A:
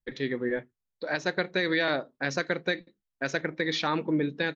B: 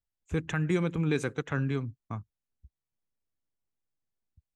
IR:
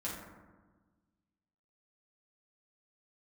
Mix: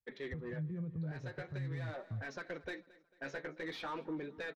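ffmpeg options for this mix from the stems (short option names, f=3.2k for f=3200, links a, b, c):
-filter_complex "[0:a]flanger=delay=4.4:depth=9.8:regen=29:speed=0.45:shape=sinusoidal,asplit=2[a][b];[b]highpass=f=720:p=1,volume=21dB,asoftclip=type=tanh:threshold=-14.5dB[c];[a][c]amix=inputs=2:normalize=0,lowpass=f=1.1k:p=1,volume=-6dB,volume=-13.5dB,asplit=2[d][e];[e]volume=-22dB[f];[1:a]aecho=1:1:1.7:0.41,alimiter=limit=-22dB:level=0:latency=1:release=27,bandpass=f=120:t=q:w=1.3:csg=0,volume=-3dB,asplit=2[g][h];[h]apad=whole_len=200661[i];[d][i]sidechaincompress=threshold=-37dB:ratio=8:attack=39:release=802[j];[f]aecho=0:1:223|446|669|892|1115|1338:1|0.43|0.185|0.0795|0.0342|0.0147[k];[j][g][k]amix=inputs=3:normalize=0,alimiter=level_in=9dB:limit=-24dB:level=0:latency=1:release=255,volume=-9dB"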